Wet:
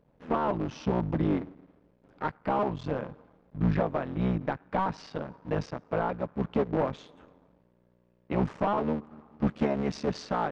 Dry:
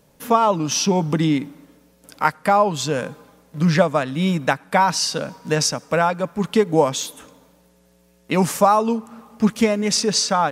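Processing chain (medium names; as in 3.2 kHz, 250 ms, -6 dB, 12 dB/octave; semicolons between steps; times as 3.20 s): cycle switcher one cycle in 3, muted; hard clipper -12.5 dBFS, distortion -13 dB; tape spacing loss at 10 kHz 44 dB, from 9.46 s at 10 kHz 35 dB; trim -5 dB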